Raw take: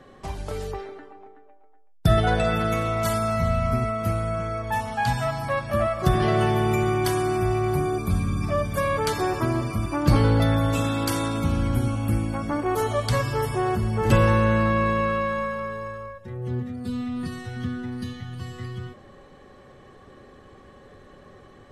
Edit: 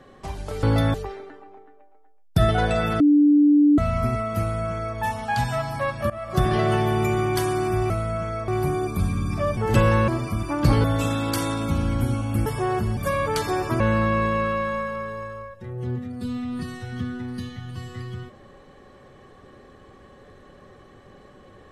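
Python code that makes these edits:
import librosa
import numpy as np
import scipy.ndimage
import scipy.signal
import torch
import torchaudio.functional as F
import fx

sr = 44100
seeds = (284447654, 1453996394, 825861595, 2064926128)

y = fx.edit(x, sr, fx.bleep(start_s=2.69, length_s=0.78, hz=293.0, db=-12.0),
    fx.duplicate(start_s=4.08, length_s=0.58, to_s=7.59),
    fx.fade_in_from(start_s=5.79, length_s=0.31, floor_db=-20.5),
    fx.swap(start_s=8.68, length_s=0.83, other_s=13.93, other_length_s=0.51),
    fx.move(start_s=10.27, length_s=0.31, to_s=0.63),
    fx.cut(start_s=12.2, length_s=1.22), tone=tone)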